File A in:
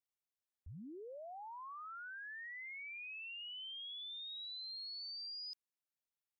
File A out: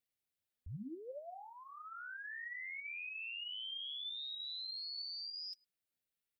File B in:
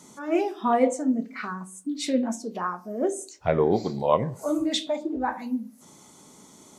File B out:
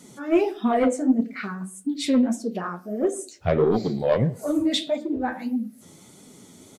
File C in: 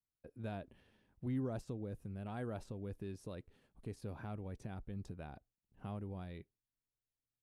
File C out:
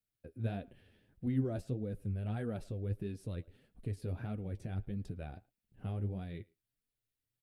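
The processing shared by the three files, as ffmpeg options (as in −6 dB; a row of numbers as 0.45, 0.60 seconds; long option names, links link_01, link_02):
-filter_complex "[0:a]equalizer=frequency=100:width_type=o:width=0.67:gain=5,equalizer=frequency=1000:width_type=o:width=0.67:gain=-11,equalizer=frequency=6300:width_type=o:width=0.67:gain=-6,aeval=exprs='0.335*sin(PI/2*1.58*val(0)/0.335)':channel_layout=same,asplit=2[link_01][link_02];[link_02]adelay=110,highpass=300,lowpass=3400,asoftclip=type=hard:threshold=-18.5dB,volume=-24dB[link_03];[link_01][link_03]amix=inputs=2:normalize=0,flanger=delay=4:depth=8.3:regen=33:speed=1.6:shape=sinusoidal"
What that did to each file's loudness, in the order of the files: +2.5, +2.5, +5.5 LU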